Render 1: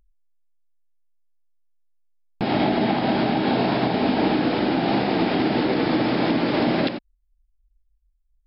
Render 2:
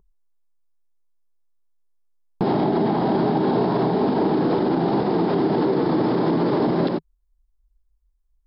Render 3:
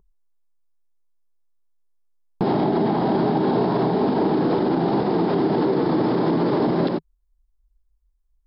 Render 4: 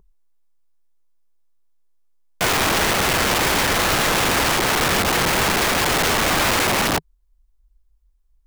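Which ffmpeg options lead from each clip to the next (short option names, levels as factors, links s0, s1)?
-af "equalizer=f=160:t=o:w=0.67:g=11,equalizer=f=400:t=o:w=0.67:g=12,equalizer=f=1000:t=o:w=0.67:g=9,equalizer=f=2500:t=o:w=0.67:g=-9,alimiter=limit=0.237:level=0:latency=1:release=61"
-af anull
-af "aeval=exprs='(mod(9.44*val(0)+1,2)-1)/9.44':c=same,volume=1.88"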